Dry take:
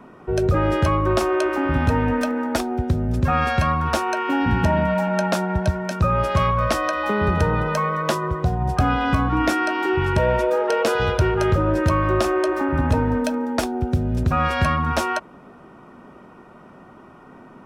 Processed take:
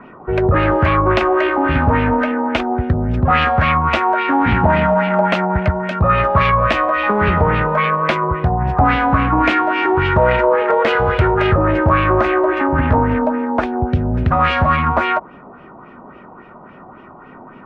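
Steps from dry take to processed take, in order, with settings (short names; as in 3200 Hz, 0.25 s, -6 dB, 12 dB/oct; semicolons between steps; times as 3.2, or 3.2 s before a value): self-modulated delay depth 0.23 ms; LFO low-pass sine 3.6 Hz 840–2800 Hz; gain +4 dB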